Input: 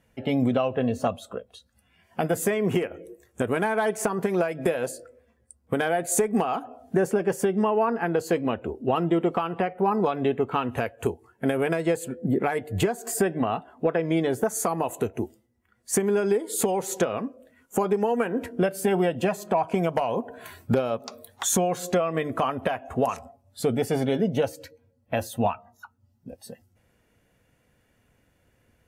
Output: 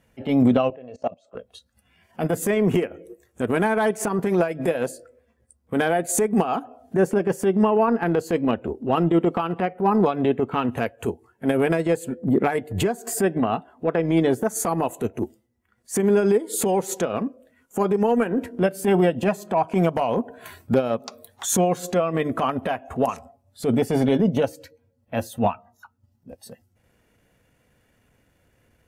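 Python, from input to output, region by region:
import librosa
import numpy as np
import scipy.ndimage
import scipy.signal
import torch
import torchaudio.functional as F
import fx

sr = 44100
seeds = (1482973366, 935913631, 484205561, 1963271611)

y = fx.chain(x, sr, fx.cabinet(low_hz=180.0, low_slope=12, high_hz=6400.0, hz=(220.0, 600.0, 1100.0, 1500.0, 2300.0, 3600.0), db=(-9, 7, -4, -8, 3, -10)),
    fx.level_steps(step_db=20), at=(0.7, 1.35))
y = fx.dynamic_eq(y, sr, hz=230.0, q=0.93, threshold_db=-37.0, ratio=4.0, max_db=5)
y = fx.transient(y, sr, attack_db=-9, sustain_db=-5)
y = y * librosa.db_to_amplitude(3.5)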